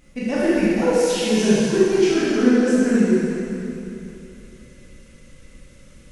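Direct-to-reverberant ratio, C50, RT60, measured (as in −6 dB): −9.5 dB, −5.0 dB, 2.9 s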